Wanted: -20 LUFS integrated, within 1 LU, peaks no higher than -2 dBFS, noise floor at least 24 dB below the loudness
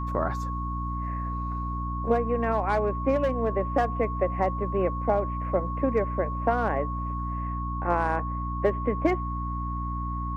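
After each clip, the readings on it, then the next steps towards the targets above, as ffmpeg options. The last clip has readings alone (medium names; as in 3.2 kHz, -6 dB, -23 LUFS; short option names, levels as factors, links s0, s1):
hum 60 Hz; highest harmonic 300 Hz; hum level -29 dBFS; steady tone 1.1 kHz; tone level -33 dBFS; loudness -28.0 LUFS; peak level -10.5 dBFS; loudness target -20.0 LUFS
-> -af "bandreject=f=60:t=h:w=4,bandreject=f=120:t=h:w=4,bandreject=f=180:t=h:w=4,bandreject=f=240:t=h:w=4,bandreject=f=300:t=h:w=4"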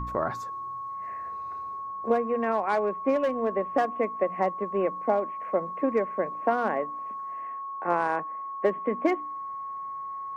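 hum not found; steady tone 1.1 kHz; tone level -33 dBFS
-> -af "bandreject=f=1100:w=30"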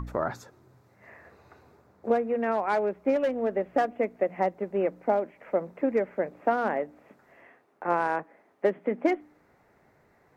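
steady tone not found; loudness -28.5 LUFS; peak level -12.0 dBFS; loudness target -20.0 LUFS
-> -af "volume=2.66"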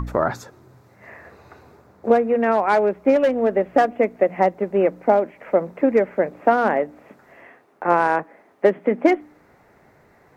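loudness -20.0 LUFS; peak level -3.5 dBFS; noise floor -55 dBFS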